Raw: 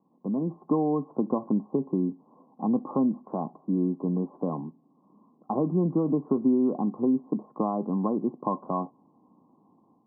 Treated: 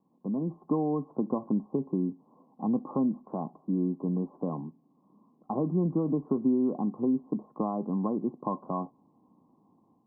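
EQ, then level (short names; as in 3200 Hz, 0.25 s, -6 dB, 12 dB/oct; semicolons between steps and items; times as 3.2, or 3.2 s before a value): low shelf 90 Hz +11 dB; -4.0 dB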